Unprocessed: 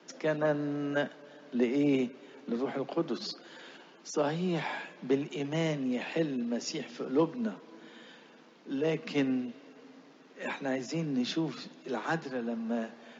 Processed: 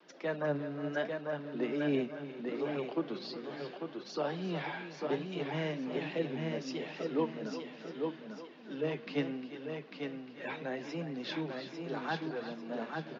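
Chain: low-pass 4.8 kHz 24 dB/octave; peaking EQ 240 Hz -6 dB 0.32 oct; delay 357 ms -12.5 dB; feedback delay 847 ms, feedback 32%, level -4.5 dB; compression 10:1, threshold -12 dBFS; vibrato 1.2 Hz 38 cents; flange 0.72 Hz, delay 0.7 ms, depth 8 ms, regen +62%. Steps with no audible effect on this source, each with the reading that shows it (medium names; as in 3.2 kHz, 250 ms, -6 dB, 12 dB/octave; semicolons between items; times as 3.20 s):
compression, threshold -12 dBFS: peak at its input -16.0 dBFS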